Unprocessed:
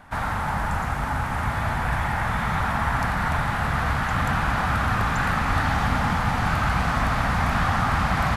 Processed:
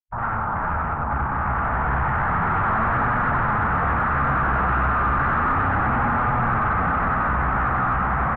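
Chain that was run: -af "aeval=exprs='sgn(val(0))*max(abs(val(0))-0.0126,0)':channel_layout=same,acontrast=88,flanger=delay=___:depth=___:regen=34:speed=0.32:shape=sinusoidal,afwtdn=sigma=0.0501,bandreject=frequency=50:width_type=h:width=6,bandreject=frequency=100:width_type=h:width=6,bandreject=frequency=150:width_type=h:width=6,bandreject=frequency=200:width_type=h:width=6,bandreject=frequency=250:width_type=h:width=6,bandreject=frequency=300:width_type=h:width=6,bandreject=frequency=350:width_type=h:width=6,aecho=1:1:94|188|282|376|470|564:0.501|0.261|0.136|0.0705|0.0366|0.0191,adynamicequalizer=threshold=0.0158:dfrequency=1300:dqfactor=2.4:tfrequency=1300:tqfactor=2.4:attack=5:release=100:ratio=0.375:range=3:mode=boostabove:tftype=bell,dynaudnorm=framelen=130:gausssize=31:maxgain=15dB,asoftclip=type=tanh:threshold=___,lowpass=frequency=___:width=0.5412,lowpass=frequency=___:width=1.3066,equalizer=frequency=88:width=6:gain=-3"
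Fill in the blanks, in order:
8.2, 7.5, -17dB, 1.8k, 1.8k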